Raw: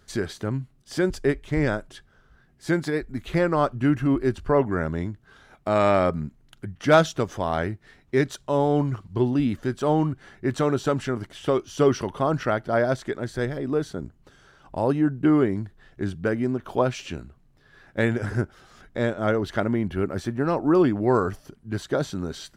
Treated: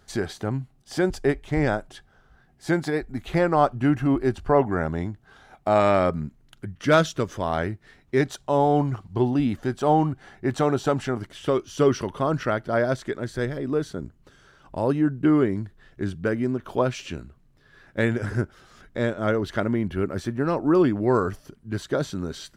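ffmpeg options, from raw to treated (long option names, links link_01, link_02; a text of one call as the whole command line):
ffmpeg -i in.wav -af "asetnsamples=nb_out_samples=441:pad=0,asendcmd='5.8 equalizer g 0;6.76 equalizer g -8;7.42 equalizer g 0;8.21 equalizer g 7.5;11.19 equalizer g -3.5',equalizer=frequency=770:width_type=o:width=0.36:gain=8.5" out.wav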